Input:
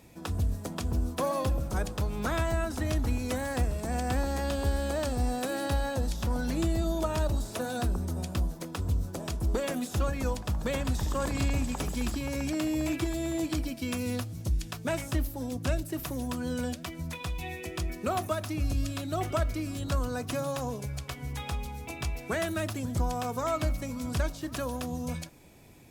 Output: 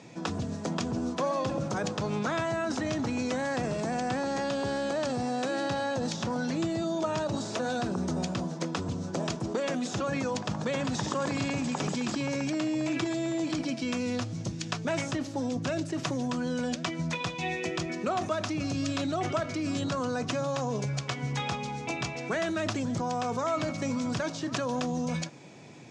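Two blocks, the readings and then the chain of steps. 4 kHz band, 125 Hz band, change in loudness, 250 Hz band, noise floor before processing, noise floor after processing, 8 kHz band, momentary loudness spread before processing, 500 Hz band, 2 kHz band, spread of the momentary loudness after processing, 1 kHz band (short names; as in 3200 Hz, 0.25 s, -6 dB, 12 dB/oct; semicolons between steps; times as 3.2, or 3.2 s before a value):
+3.5 dB, -3.0 dB, +1.0 dB, +3.0 dB, -43 dBFS, -39 dBFS, +0.5 dB, 6 LU, +2.5 dB, +3.0 dB, 3 LU, +2.5 dB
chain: elliptic band-pass 130–6600 Hz, stop band 40 dB; in parallel at -1 dB: negative-ratio compressor -37 dBFS, ratio -0.5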